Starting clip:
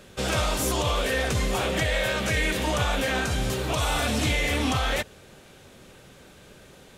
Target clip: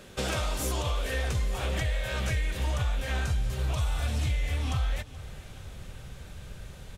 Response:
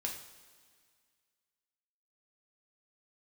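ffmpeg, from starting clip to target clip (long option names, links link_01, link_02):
-af "asubboost=boost=8.5:cutoff=100,acompressor=threshold=-27dB:ratio=5,aecho=1:1:429|858|1287|1716|2145:0.112|0.0662|0.0391|0.023|0.0136"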